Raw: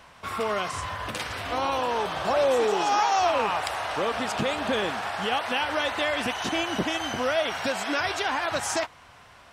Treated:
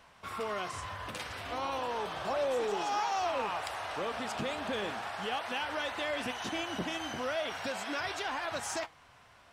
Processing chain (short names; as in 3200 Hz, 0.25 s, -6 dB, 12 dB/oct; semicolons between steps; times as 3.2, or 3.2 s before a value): flange 0.35 Hz, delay 4.1 ms, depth 9.2 ms, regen +83%; in parallel at -6 dB: overloaded stage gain 28.5 dB; on the sum: gain -7 dB